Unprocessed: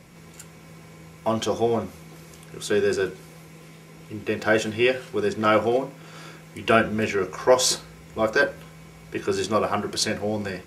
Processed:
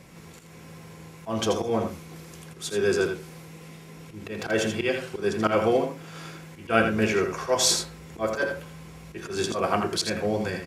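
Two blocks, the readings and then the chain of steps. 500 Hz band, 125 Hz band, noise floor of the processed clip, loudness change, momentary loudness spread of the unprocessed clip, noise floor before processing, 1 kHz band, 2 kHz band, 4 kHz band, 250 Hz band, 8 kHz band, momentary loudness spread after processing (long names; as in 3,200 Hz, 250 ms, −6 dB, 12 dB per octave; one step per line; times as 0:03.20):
−3.0 dB, 0.0 dB, −46 dBFS, −2.5 dB, 18 LU, −47 dBFS, −3.0 dB, −3.5 dB, −0.5 dB, −1.5 dB, 0.0 dB, 22 LU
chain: volume swells 124 ms
single-tap delay 82 ms −6.5 dB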